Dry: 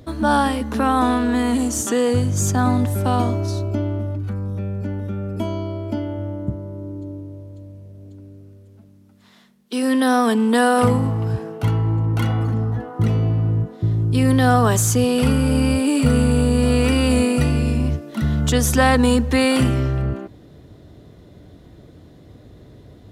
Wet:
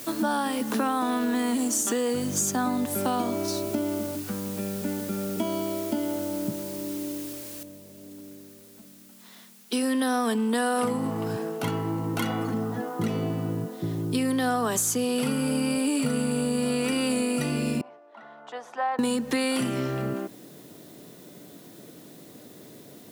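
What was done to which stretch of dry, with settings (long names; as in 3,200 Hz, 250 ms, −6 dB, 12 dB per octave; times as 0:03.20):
0:07.63: noise floor change −46 dB −59 dB
0:17.81–0:18.99: four-pole ladder band-pass 910 Hz, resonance 50%
whole clip: high-pass filter 170 Hz 24 dB per octave; high-shelf EQ 5,200 Hz +6.5 dB; downward compressor, threshold −23 dBFS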